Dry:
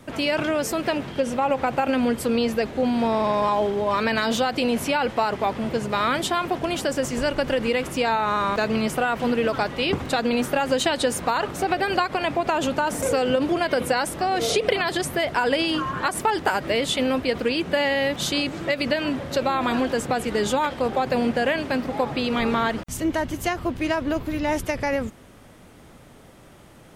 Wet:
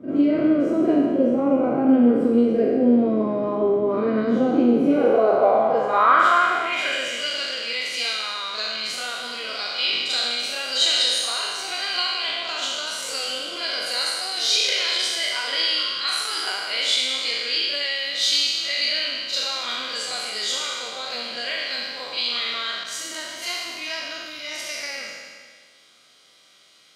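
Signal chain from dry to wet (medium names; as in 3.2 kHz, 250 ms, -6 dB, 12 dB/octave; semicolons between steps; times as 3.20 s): spectral sustain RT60 1.81 s; comb of notches 890 Hz; band-pass sweep 300 Hz -> 4.3 kHz, 4.81–7.58 s; on a send: reverse echo 42 ms -6.5 dB; on the sum: trim +7.5 dB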